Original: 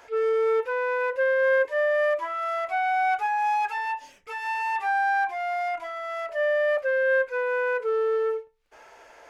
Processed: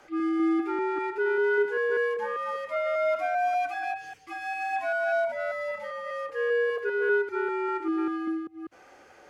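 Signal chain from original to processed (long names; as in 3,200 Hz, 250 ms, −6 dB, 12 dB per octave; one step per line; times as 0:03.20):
delay that plays each chunk backwards 197 ms, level −8 dB
frequency shifter −120 Hz
level −3.5 dB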